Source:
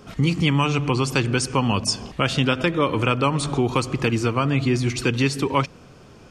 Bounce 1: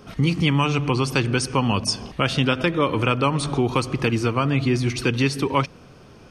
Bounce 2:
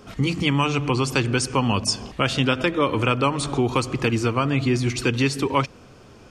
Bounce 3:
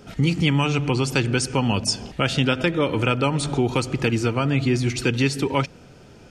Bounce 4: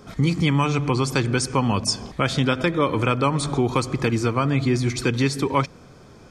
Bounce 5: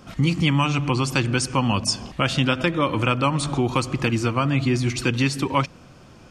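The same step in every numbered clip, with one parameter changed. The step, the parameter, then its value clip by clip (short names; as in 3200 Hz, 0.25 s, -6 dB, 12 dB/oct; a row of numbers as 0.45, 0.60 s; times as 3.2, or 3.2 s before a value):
notch, frequency: 7300, 160, 1100, 2800, 430 Hz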